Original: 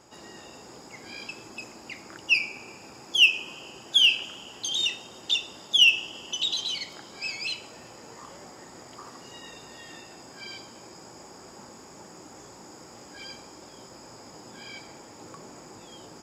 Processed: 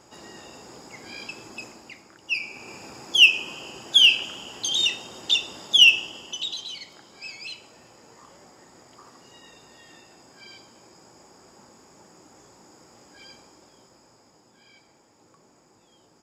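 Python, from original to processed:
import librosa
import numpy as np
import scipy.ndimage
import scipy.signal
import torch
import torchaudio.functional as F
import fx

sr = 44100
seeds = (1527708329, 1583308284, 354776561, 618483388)

y = fx.gain(x, sr, db=fx.line((1.65, 1.5), (2.16, -8.5), (2.75, 4.0), (5.88, 4.0), (6.65, -5.5), (13.41, -5.5), (14.51, -13.0)))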